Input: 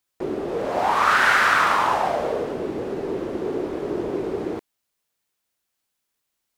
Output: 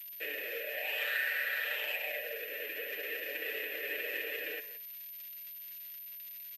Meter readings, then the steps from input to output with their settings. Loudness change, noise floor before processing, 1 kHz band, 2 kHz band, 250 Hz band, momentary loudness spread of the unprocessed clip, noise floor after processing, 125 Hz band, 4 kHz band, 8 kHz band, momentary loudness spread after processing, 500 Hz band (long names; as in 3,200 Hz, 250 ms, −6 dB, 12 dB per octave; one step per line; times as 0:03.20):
−14.0 dB, −79 dBFS, −31.5 dB, −10.5 dB, −28.5 dB, 13 LU, −47 dBFS, below −35 dB, −8.0 dB, −17.0 dB, 12 LU, −17.0 dB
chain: each half-wave held at its own peak
flanger 0.55 Hz, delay 4.4 ms, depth 7.5 ms, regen +78%
formant filter e
downward compressor, threshold −35 dBFS, peak gain reduction 7 dB
three-way crossover with the lows and the highs turned down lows −16 dB, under 440 Hz, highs −14 dB, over 2,900 Hz
speech leveller 2 s
surface crackle 280 per second −50 dBFS
high-pass filter 120 Hz 24 dB per octave
high shelf with overshoot 1,600 Hz +12.5 dB, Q 1.5
comb filter 6.7 ms, depth 83%
far-end echo of a speakerphone 170 ms, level −13 dB
switching amplifier with a slow clock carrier 13,000 Hz
level −3 dB